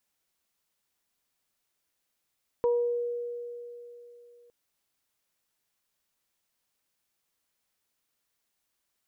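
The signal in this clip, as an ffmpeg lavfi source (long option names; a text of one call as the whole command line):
ffmpeg -f lavfi -i "aevalsrc='0.0891*pow(10,-3*t/3.26)*sin(2*PI*479*t)+0.0266*pow(10,-3*t/0.49)*sin(2*PI*958*t)':duration=1.86:sample_rate=44100" out.wav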